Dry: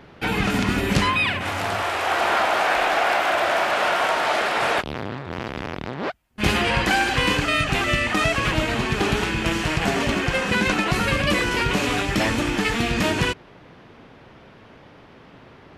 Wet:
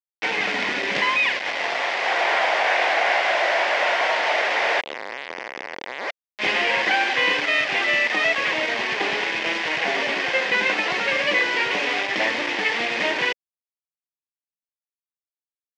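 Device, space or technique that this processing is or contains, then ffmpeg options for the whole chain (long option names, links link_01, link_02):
hand-held game console: -af "acrusher=bits=3:mix=0:aa=0.000001,highpass=480,equalizer=frequency=530:width_type=q:width=4:gain=3,equalizer=frequency=1300:width_type=q:width=4:gain=-8,equalizer=frequency=2000:width_type=q:width=4:gain=7,equalizer=frequency=4100:width_type=q:width=4:gain=-4,lowpass=frequency=4600:width=0.5412,lowpass=frequency=4600:width=1.3066"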